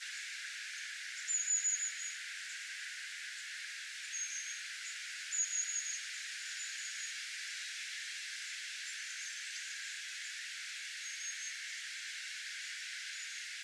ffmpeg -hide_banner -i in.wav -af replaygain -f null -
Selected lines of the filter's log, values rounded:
track_gain = +25.0 dB
track_peak = 0.038